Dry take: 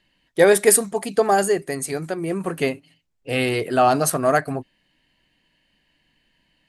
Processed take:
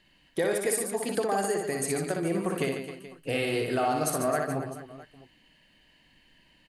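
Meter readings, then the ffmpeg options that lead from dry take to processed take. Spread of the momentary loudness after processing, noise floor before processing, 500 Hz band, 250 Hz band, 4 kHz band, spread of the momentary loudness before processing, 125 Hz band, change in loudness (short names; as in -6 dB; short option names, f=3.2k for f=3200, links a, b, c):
12 LU, -68 dBFS, -9.0 dB, -6.0 dB, -7.0 dB, 12 LU, -6.0 dB, -9.0 dB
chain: -af "acompressor=threshold=-31dB:ratio=4,aecho=1:1:60|144|261.6|426.2|656.7:0.631|0.398|0.251|0.158|0.1,volume=2dB"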